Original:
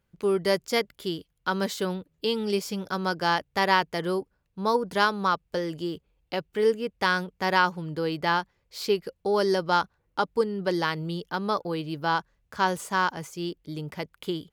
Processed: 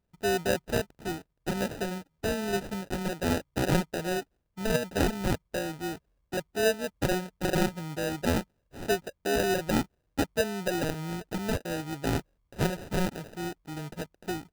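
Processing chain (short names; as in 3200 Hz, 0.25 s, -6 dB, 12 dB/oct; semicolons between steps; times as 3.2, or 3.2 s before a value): sample-rate reducer 1100 Hz, jitter 0%; gain -3 dB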